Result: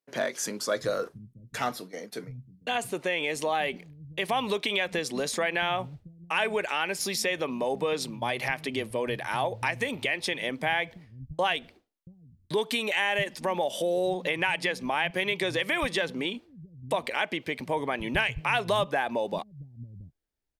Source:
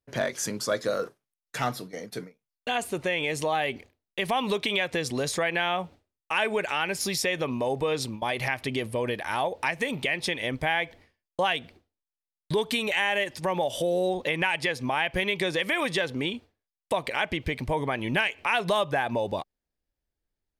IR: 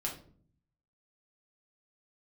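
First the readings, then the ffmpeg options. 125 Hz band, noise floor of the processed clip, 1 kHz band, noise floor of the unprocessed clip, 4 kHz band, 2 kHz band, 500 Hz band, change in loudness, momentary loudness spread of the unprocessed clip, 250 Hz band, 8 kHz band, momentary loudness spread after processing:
-3.5 dB, -63 dBFS, -1.0 dB, under -85 dBFS, -1.0 dB, -1.0 dB, -1.0 dB, -1.0 dB, 7 LU, -2.0 dB, -1.0 dB, 13 LU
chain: -filter_complex "[0:a]acrossover=split=160[s0][s1];[s0]adelay=680[s2];[s2][s1]amix=inputs=2:normalize=0,volume=0.891"

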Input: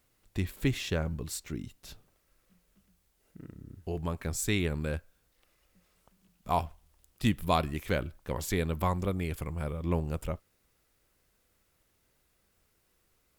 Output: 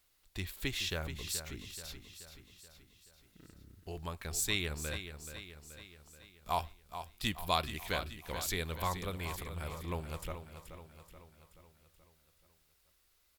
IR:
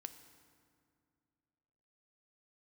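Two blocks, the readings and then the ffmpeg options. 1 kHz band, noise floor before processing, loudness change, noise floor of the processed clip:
-4.0 dB, -73 dBFS, -5.5 dB, -72 dBFS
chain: -af "equalizer=f=125:t=o:w=1:g=-9,equalizer=f=250:t=o:w=1:g=-7,equalizer=f=500:t=o:w=1:g=-4,equalizer=f=4000:t=o:w=1:g=6,equalizer=f=16000:t=o:w=1:g=5,aecho=1:1:429|858|1287|1716|2145|2574:0.316|0.171|0.0922|0.0498|0.0269|0.0145,volume=0.708"

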